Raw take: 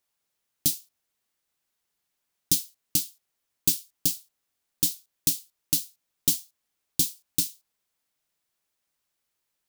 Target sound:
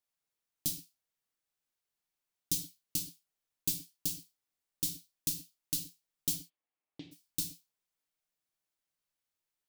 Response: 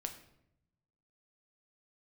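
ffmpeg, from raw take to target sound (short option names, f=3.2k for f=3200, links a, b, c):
-filter_complex "[0:a]asplit=3[a][b][c];[a]afade=t=out:st=6.35:d=0.02[d];[b]highpass=160,equalizer=f=180:t=q:w=4:g=-9,equalizer=f=770:t=q:w=4:g=3,equalizer=f=1.5k:t=q:w=4:g=-4,lowpass=f=2.6k:w=0.5412,lowpass=f=2.6k:w=1.3066,afade=t=in:st=6.35:d=0.02,afade=t=out:st=7.11:d=0.02[e];[c]afade=t=in:st=7.11:d=0.02[f];[d][e][f]amix=inputs=3:normalize=0[g];[1:a]atrim=start_sample=2205,atrim=end_sample=6174[h];[g][h]afir=irnorm=-1:irlink=0,volume=-7.5dB"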